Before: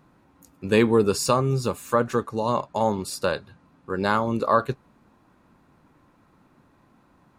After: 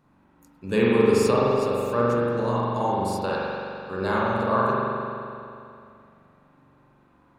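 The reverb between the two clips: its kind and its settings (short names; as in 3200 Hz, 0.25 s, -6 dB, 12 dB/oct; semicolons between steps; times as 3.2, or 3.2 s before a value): spring tank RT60 2.6 s, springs 42 ms, chirp 65 ms, DRR -6.5 dB; gain -7 dB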